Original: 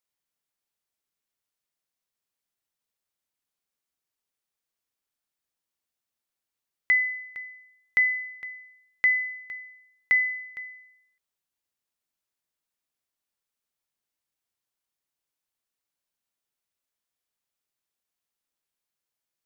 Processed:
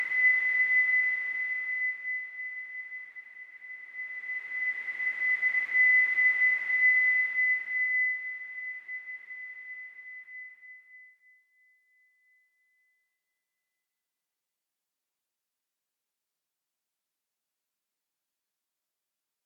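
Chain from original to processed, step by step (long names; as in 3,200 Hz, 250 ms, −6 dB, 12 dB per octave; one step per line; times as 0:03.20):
extreme stretch with random phases 5.7×, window 1.00 s, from 0:09.05
high-pass filter 180 Hz 12 dB per octave
level −1 dB
Opus 64 kbit/s 48,000 Hz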